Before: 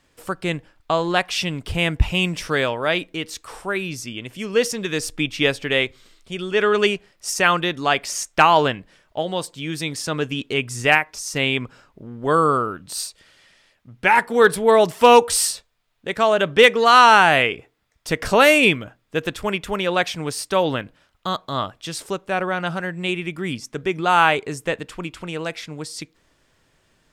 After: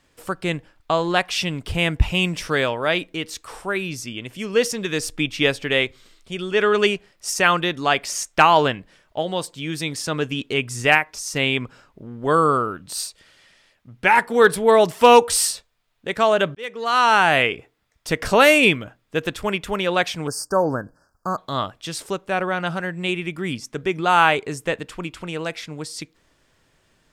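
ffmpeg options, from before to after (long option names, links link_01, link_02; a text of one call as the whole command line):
ffmpeg -i in.wav -filter_complex "[0:a]asettb=1/sr,asplit=3[link_01][link_02][link_03];[link_01]atrim=end=20.274[link_04];[link_02]atrim=start=20.27:end=21.38,asetpts=PTS-STARTPTS,afade=type=in:duration=0.004:curve=qsin,afade=type=out:start_time=1.106:duration=0.004:curve=qsin,asuperstop=centerf=2800:order=20:qfactor=0.96[link_05];[link_03]atrim=start=21.376[link_06];[link_04][link_05]acrossfade=duration=0.004:curve1=hsin:curve2=qsin[link_07];[link_07][link_06]acrossfade=duration=0.004:curve1=qsin:curve2=hsin,asplit=2[link_08][link_09];[link_08]atrim=end=16.55,asetpts=PTS-STARTPTS,afade=type=out:start_time=16.546:duration=0.004:curve=hsin[link_10];[link_09]atrim=start=16.55,asetpts=PTS-STARTPTS,afade=type=in:duration=0.9[link_11];[link_10][link_11]concat=n=2:v=0:a=1" out.wav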